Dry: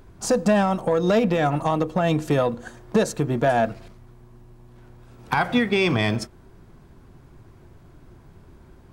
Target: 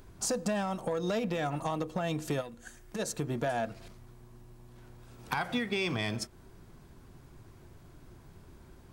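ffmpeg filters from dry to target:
-filter_complex "[0:a]highshelf=f=3200:g=8,acompressor=threshold=0.0355:ratio=2,asplit=3[s0][s1][s2];[s0]afade=t=out:st=2.4:d=0.02[s3];[s1]equalizer=f=125:t=o:w=1:g=-9,equalizer=f=250:t=o:w=1:g=-4,equalizer=f=500:t=o:w=1:g=-9,equalizer=f=1000:t=o:w=1:g=-9,equalizer=f=4000:t=o:w=1:g=-6,afade=t=in:st=2.4:d=0.02,afade=t=out:st=2.98:d=0.02[s4];[s2]afade=t=in:st=2.98:d=0.02[s5];[s3][s4][s5]amix=inputs=3:normalize=0,volume=0.562"

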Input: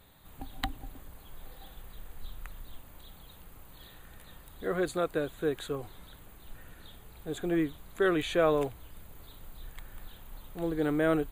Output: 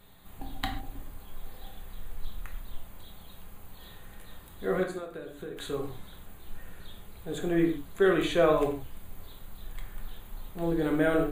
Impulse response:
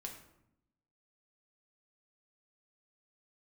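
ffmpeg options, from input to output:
-filter_complex "[0:a]asettb=1/sr,asplit=3[s0][s1][s2];[s0]atrim=end=4.834[s3];[s1]atrim=start=4.83:end=5.57,asetpts=PTS-STARTPTS,afade=t=in:d=0.004:c=qsin,afade=t=out:st=0.736:d=0.004:c=qsin,acompressor=threshold=0.01:ratio=5[s4];[s2]atrim=start=5.566[s5];[s3][s4]acrossfade=d=0.004:c1=hsin:c2=qsin[s6];[s6][s5]acrossfade=d=0.004:c1=qsin:c2=hsin[s7];[1:a]atrim=start_sample=2205,afade=t=out:st=0.21:d=0.01,atrim=end_sample=9702[s8];[s7][s8]afir=irnorm=-1:irlink=0,volume=1.88"

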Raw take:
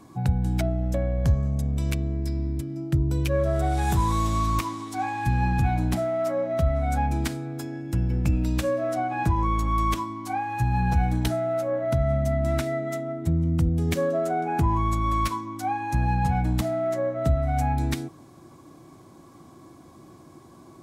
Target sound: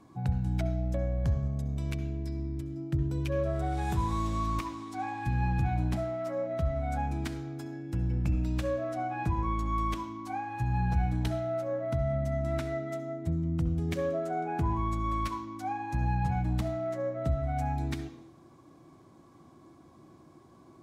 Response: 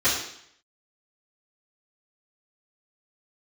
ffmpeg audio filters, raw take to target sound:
-filter_complex "[0:a]highshelf=f=7100:g=-9.5,asplit=2[s0][s1];[1:a]atrim=start_sample=2205,adelay=61[s2];[s1][s2]afir=irnorm=-1:irlink=0,volume=0.0447[s3];[s0][s3]amix=inputs=2:normalize=0,volume=0.447"

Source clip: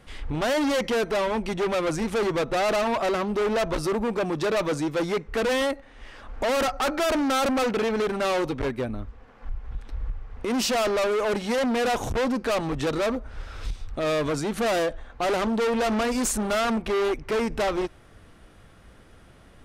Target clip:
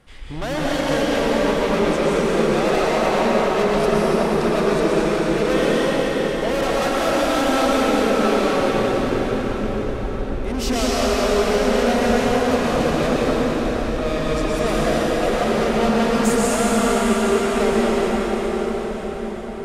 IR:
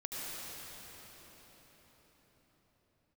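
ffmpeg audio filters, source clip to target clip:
-filter_complex "[1:a]atrim=start_sample=2205,asetrate=28665,aresample=44100[s0];[0:a][s0]afir=irnorm=-1:irlink=0"

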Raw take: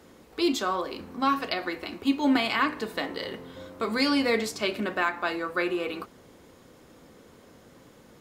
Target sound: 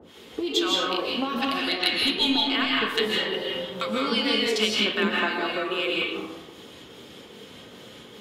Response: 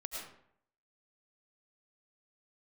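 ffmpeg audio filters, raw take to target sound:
-filter_complex "[0:a]highpass=68,equalizer=f=3200:w=1.8:g=14.5,asettb=1/sr,asplit=3[s0][s1][s2];[s0]atrim=end=3.064[s3];[s1]atrim=start=3.06:end=3.69,asetpts=PTS-STARTPTS,afade=t=in:d=0.004:c=qsin,afade=t=out:st=0.626:d=0.004:c=qsin,aecho=1:1:5.3:0.84,atrim=end_sample=27783[s4];[s2]atrim=start=3.686[s5];[s3][s4]acrossfade=d=0.004:c1=hsin:c2=qsin[s6];[s6][s5]acrossfade=d=0.004:c1=qsin:c2=hsin,asettb=1/sr,asplit=3[s7][s8][s9];[s7]atrim=end=4.874[s10];[s8]atrim=start=4.87:end=5.44,asetpts=PTS-STARTPTS,afade=t=in:d=0.004:c=qsin,afade=t=out:st=0.566:d=0.004:c=qsin,equalizer=f=270:w=1.2:g=10.5[s11];[s9]atrim=start=5.436[s12];[s10][s11]acrossfade=d=0.004:c1=hsin:c2=qsin[s13];[s13][s12]acrossfade=d=0.004:c1=qsin:c2=hsin,acompressor=threshold=0.0398:ratio=4,asettb=1/sr,asplit=3[s14][s15][s16];[s14]atrim=end=1.594[s17];[s15]atrim=start=1.59:end=2.43,asetpts=PTS-STARTPTS,afade=t=in:d=0.004:c=qsin,afade=t=out:st=0.836:d=0.004:c=qsin,lowpass=f=4100:t=q:w=3.5[s18];[s16]atrim=start=2.426[s19];[s17][s18]acrossfade=d=0.004:c1=hsin:c2=qsin[s20];[s20][s19]acrossfade=d=0.004:c1=qsin:c2=hsin,asoftclip=type=hard:threshold=0.15,acrossover=split=930[s21][s22];[s21]aeval=exprs='val(0)*(1-1/2+1/2*cos(2*PI*2.5*n/s))':c=same[s23];[s22]aeval=exprs='val(0)*(1-1/2-1/2*cos(2*PI*2.5*n/s))':c=same[s24];[s23][s24]amix=inputs=2:normalize=0[s25];[1:a]atrim=start_sample=2205,asetrate=29106,aresample=44100[s26];[s25][s26]afir=irnorm=-1:irlink=0,volume=2.66"

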